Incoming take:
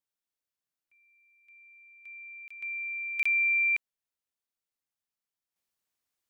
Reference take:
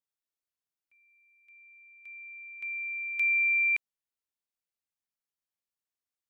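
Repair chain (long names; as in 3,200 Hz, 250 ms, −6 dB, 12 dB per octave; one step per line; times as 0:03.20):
repair the gap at 0:02.48/0:03.23, 25 ms
level 0 dB, from 0:05.56 −7 dB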